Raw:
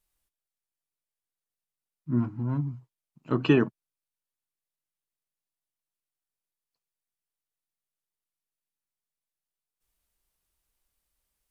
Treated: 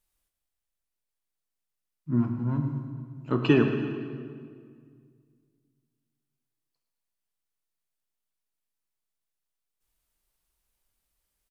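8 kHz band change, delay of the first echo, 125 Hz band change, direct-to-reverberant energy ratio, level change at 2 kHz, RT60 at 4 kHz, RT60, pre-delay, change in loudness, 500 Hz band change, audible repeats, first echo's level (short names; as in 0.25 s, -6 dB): n/a, 0.111 s, +1.5 dB, 4.5 dB, +1.0 dB, 1.5 s, 2.1 s, 24 ms, 0.0 dB, +1.5 dB, 4, -13.0 dB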